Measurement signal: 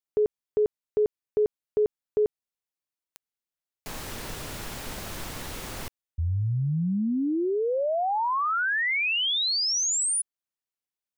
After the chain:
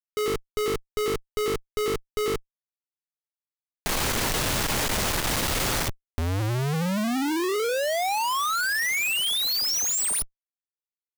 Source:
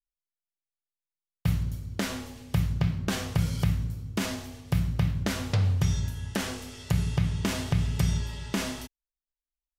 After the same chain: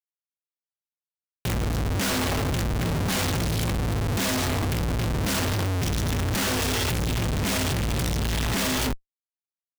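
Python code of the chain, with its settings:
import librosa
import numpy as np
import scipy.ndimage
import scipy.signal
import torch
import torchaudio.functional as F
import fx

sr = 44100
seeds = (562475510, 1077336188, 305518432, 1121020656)

y = fx.hum_notches(x, sr, base_hz=50, count=9)
y = fx.power_curve(y, sr, exponent=0.5)
y = fx.schmitt(y, sr, flips_db=-33.0)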